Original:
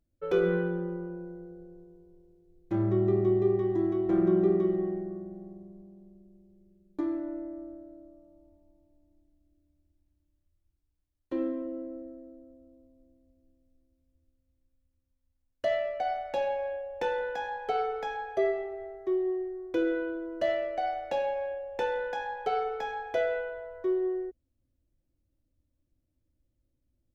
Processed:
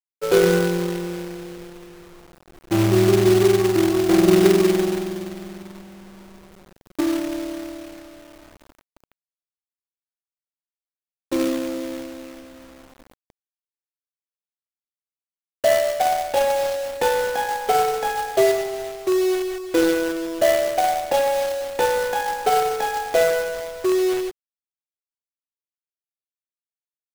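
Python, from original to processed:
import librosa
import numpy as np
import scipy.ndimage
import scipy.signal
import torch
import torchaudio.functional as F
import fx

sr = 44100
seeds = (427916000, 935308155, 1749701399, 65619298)

y = fx.peak_eq(x, sr, hz=760.0, db=2.5, octaves=1.2)
y = fx.quant_companded(y, sr, bits=4)
y = y * 10.0 ** (8.5 / 20.0)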